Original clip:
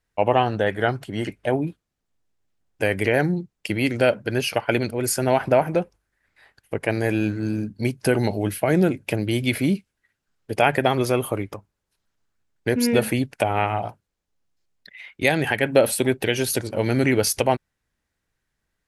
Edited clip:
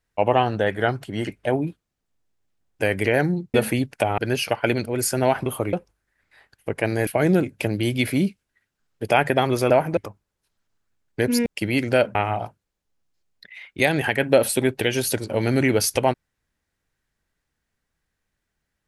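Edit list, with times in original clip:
3.54–4.23 swap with 12.94–13.58
5.51–5.78 swap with 11.18–11.45
7.12–8.55 cut

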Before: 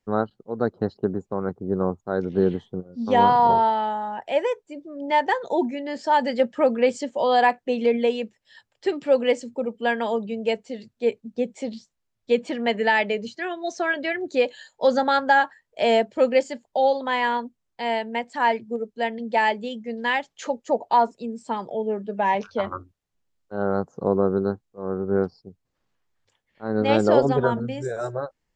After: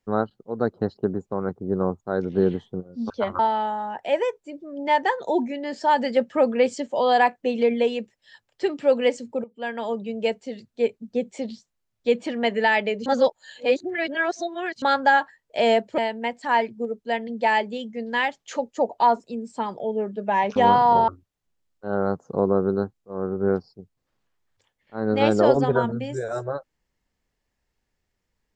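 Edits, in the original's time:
3.1–3.62 swap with 22.47–22.76
9.67–10.63 fade in equal-power, from -18 dB
13.29–15.05 reverse
16.21–17.89 cut

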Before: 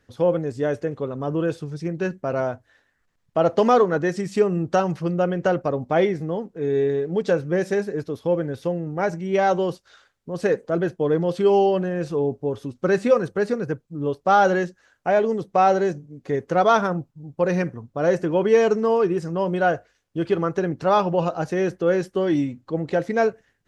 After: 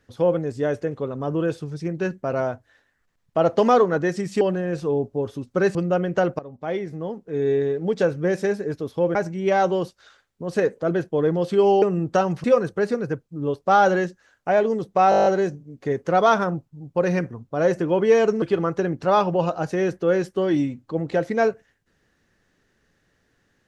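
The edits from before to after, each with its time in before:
4.41–5.03 swap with 11.69–13.03
5.67–6.71 fade in, from -18 dB
8.43–9.02 cut
15.69 stutter 0.02 s, 9 plays
18.85–20.21 cut

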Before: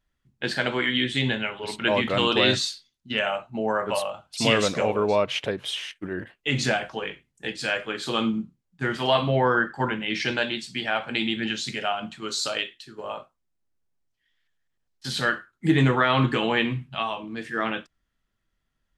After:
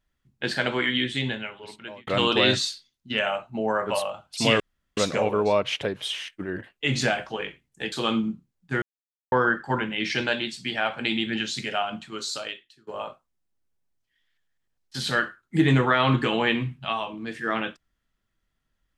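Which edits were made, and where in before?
0.86–2.07 fade out
4.6 insert room tone 0.37 s
7.55–8.02 cut
8.92–9.42 mute
12.02–12.97 fade out, to -18 dB

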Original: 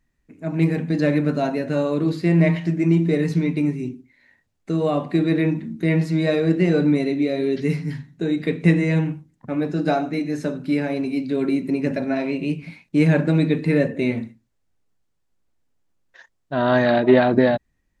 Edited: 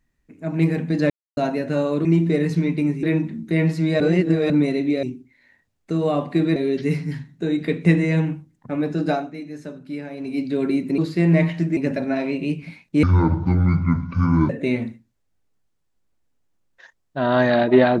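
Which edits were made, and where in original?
1.1–1.37 mute
2.05–2.84 move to 11.77
3.82–5.35 move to 7.35
6.32–6.82 reverse
9.86–11.19 dip -9.5 dB, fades 0.23 s
13.03–13.85 speed 56%

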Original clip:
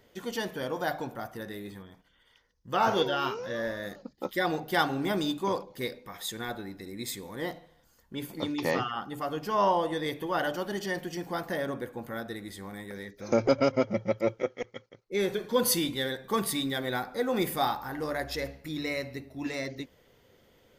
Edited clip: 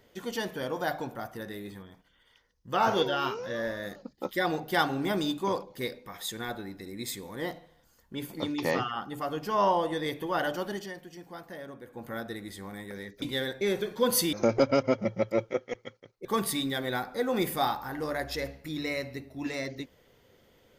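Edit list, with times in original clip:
10.67–12.11 dip -10.5 dB, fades 0.27 s
13.22–15.14 swap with 15.86–16.25

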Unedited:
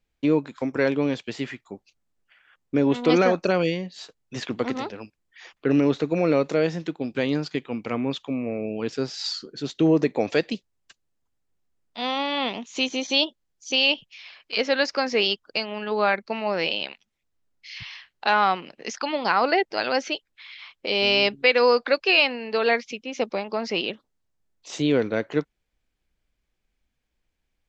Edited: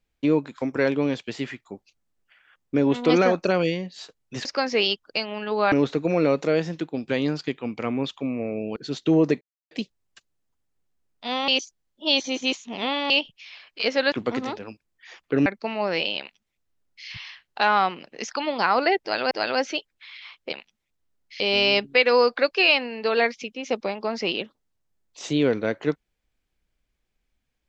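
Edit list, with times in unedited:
4.45–5.79 swap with 14.85–16.12
8.83–9.49 cut
10.14–10.44 mute
12.21–13.83 reverse
16.85–17.73 copy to 20.89
19.68–19.97 loop, 2 plays

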